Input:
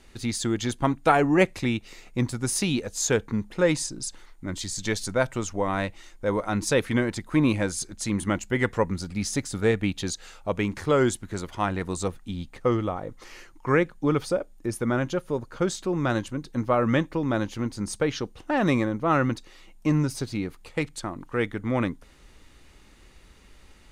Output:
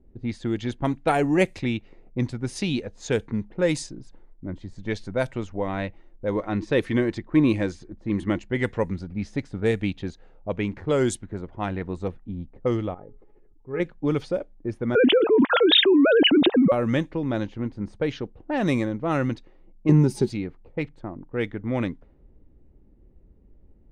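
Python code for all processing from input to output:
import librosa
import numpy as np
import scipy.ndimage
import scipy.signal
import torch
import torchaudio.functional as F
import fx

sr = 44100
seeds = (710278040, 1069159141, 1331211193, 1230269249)

y = fx.chain(x, sr, fx.air_absorb(metres=62.0),
    fx.small_body(hz=(340.0, 1100.0, 1800.0), ring_ms=30, db=6), at=(6.35, 8.52))
y = fx.chain(y, sr, fx.high_shelf(hz=3600.0, db=-10.0),
    fx.comb_fb(f0_hz=420.0, decay_s=0.17, harmonics='all', damping=0.0, mix_pct=80),
    fx.sustainer(db_per_s=27.0), at=(12.94, 13.8))
y = fx.chain(y, sr, fx.sine_speech(),
    fx.low_shelf(hz=450.0, db=6.5),
    fx.env_flatten(amount_pct=100), at=(14.95, 16.72))
y = fx.chain(y, sr, fx.high_shelf(hz=4600.0, db=-6.5),
    fx.small_body(hz=(210.0, 370.0, 840.0), ring_ms=55, db=16), at=(19.89, 20.3))
y = fx.dynamic_eq(y, sr, hz=9200.0, q=2.8, threshold_db=-51.0, ratio=4.0, max_db=4)
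y = fx.env_lowpass(y, sr, base_hz=390.0, full_db=-17.5)
y = fx.peak_eq(y, sr, hz=1200.0, db=-7.0, octaves=0.86)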